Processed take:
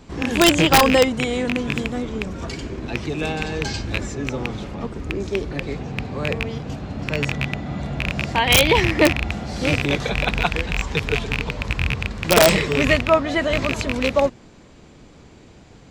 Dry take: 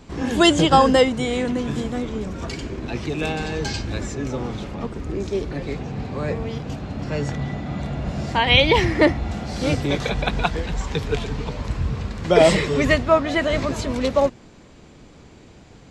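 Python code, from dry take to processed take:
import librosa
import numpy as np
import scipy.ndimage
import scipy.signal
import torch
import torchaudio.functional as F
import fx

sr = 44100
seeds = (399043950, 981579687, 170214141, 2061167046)

y = fx.rattle_buzz(x, sr, strikes_db=-22.0, level_db=-8.0)
y = (np.mod(10.0 ** (4.0 / 20.0) * y + 1.0, 2.0) - 1.0) / 10.0 ** (4.0 / 20.0)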